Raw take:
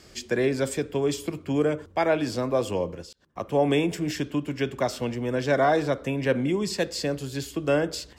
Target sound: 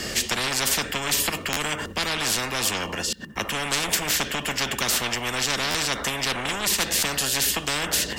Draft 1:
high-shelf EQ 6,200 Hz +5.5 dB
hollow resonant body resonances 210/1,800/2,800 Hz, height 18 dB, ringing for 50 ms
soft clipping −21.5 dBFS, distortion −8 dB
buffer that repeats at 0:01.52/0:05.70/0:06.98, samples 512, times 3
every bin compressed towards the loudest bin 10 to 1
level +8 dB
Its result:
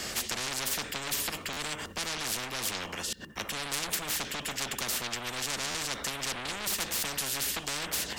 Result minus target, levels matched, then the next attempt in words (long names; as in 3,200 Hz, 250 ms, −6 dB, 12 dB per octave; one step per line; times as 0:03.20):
soft clipping: distortion +8 dB
high-shelf EQ 6,200 Hz +5.5 dB
hollow resonant body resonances 210/1,800/2,800 Hz, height 18 dB, ringing for 50 ms
soft clipping −13 dBFS, distortion −16 dB
buffer that repeats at 0:01.52/0:05.70/0:06.98, samples 512, times 3
every bin compressed towards the loudest bin 10 to 1
level +8 dB